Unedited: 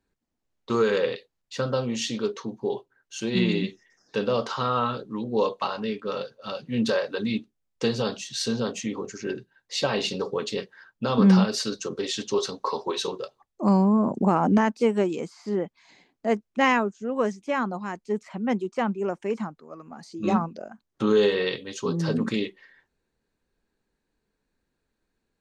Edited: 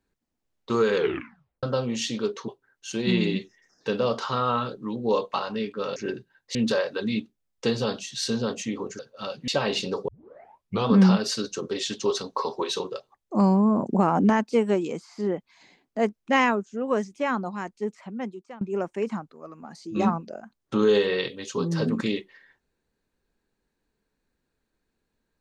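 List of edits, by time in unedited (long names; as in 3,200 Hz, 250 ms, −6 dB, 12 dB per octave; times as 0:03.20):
0:00.95: tape stop 0.68 s
0:02.48–0:02.76: remove
0:06.24–0:06.73: swap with 0:09.17–0:09.76
0:10.36: tape start 0.79 s
0:17.90–0:18.89: fade out, to −22 dB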